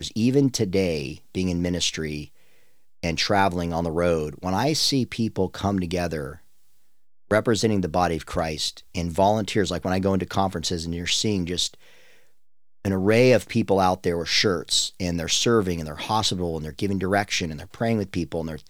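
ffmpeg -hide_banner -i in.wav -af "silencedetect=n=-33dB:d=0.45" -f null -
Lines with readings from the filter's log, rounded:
silence_start: 2.25
silence_end: 3.03 | silence_duration: 0.79
silence_start: 6.33
silence_end: 7.31 | silence_duration: 0.98
silence_start: 11.68
silence_end: 12.85 | silence_duration: 1.17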